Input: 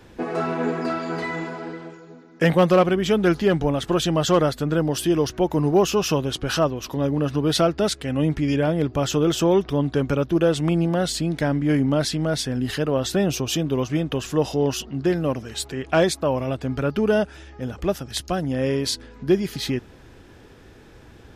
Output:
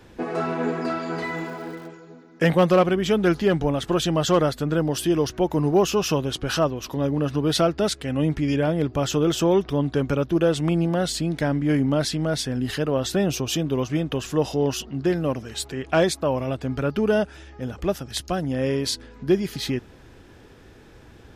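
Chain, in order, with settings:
0:01.21–0:01.86: surface crackle 350 per second −40 dBFS
level −1 dB

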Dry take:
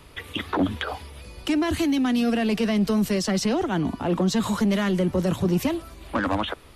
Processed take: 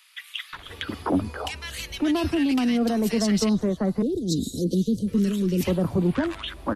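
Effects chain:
0:03.49–0:05.08: Chebyshev band-stop filter 480–3,800 Hz, order 4
multiband delay without the direct sound highs, lows 530 ms, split 1,500 Hz

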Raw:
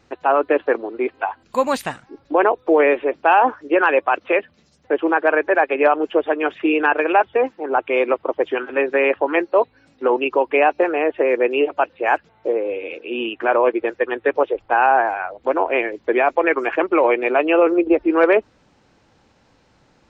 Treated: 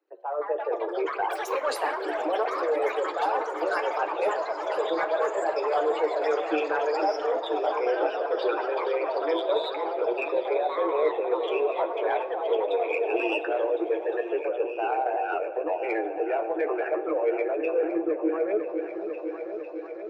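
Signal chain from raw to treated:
spectral envelope exaggerated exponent 2
source passing by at 0:05.76, 9 m/s, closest 3.8 metres
camcorder AGC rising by 24 dB per second
Butterworth high-pass 300 Hz 96 dB per octave
reversed playback
downward compressor 4 to 1, threshold −33 dBFS, peak gain reduction 18.5 dB
reversed playback
flanger 0.7 Hz, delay 9.2 ms, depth 7.4 ms, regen +27%
in parallel at −7 dB: soft clipping −32 dBFS, distortion −16 dB
on the sum: echo whose low-pass opens from repeat to repeat 500 ms, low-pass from 400 Hz, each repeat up 2 octaves, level −6 dB
rectangular room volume 1,800 cubic metres, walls mixed, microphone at 0.48 metres
delay with pitch and tempo change per echo 237 ms, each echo +6 semitones, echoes 3, each echo −6 dB
level +6.5 dB

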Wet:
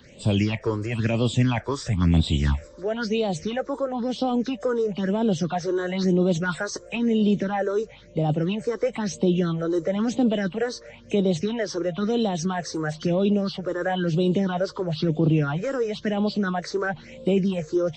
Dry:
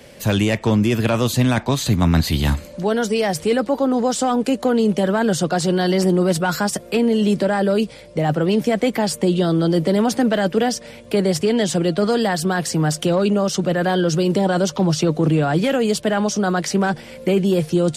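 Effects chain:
hearing-aid frequency compression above 2,800 Hz 1.5 to 1
all-pass phaser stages 6, 1 Hz, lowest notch 180–1,800 Hz
level −3.5 dB

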